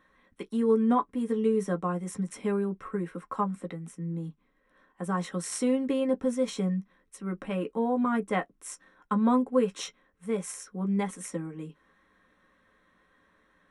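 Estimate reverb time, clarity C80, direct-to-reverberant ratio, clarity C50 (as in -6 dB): not exponential, 60.0 dB, 3.0 dB, 41.5 dB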